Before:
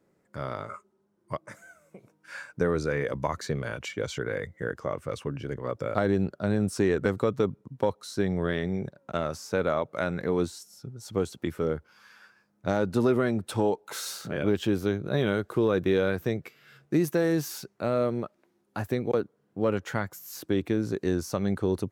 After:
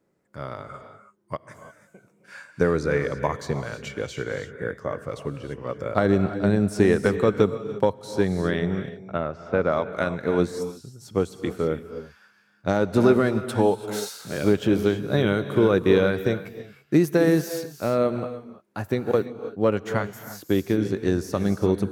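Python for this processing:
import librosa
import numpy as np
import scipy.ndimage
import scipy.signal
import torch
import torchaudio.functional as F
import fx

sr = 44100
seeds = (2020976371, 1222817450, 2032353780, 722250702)

y = fx.lowpass(x, sr, hz=2200.0, slope=12, at=(8.97, 9.71), fade=0.02)
y = fx.rev_gated(y, sr, seeds[0], gate_ms=360, shape='rising', drr_db=7.5)
y = fx.upward_expand(y, sr, threshold_db=-37.0, expansion=1.5)
y = y * 10.0 ** (6.5 / 20.0)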